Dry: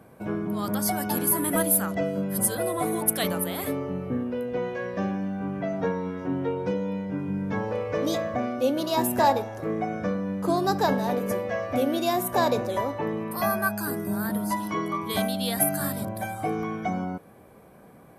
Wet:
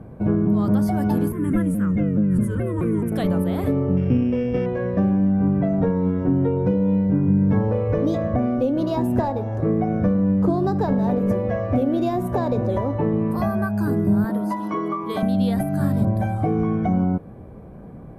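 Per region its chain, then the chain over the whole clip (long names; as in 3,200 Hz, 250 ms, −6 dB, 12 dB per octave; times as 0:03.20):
0:01.32–0:03.12: Chebyshev low-pass filter 7,800 Hz + phaser with its sweep stopped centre 1,800 Hz, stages 4 + pitch modulation by a square or saw wave saw down 4.7 Hz, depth 160 cents
0:03.97–0:04.66: samples sorted by size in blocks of 16 samples + high-frequency loss of the air 200 metres
0:14.24–0:15.23: high-pass filter 310 Hz + dynamic equaliser 1,200 Hz, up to +6 dB, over −44 dBFS, Q 4.5
whole clip: downward compressor 6 to 1, threshold −26 dBFS; spectral tilt −4.5 dB per octave; level +2.5 dB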